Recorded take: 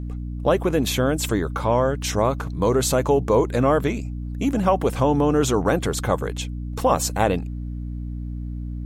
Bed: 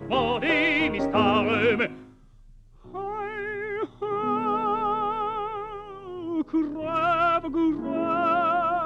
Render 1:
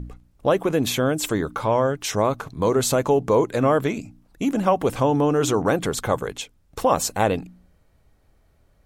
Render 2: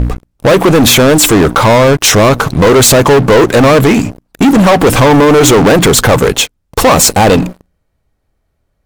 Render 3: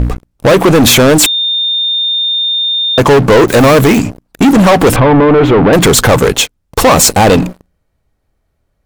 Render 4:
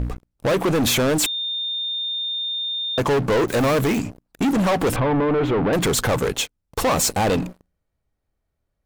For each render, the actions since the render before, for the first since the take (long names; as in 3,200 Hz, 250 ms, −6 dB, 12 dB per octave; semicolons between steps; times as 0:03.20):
hum removal 60 Hz, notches 5
in parallel at +0.5 dB: brickwall limiter −13 dBFS, peak gain reduction 7.5 dB; on the sum: leveller curve on the samples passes 5
0:01.26–0:02.98: beep over 3,630 Hz −10 dBFS; 0:03.48–0:03.99: spike at every zero crossing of −11.5 dBFS; 0:04.96–0:05.73: high-frequency loss of the air 430 metres
level −13 dB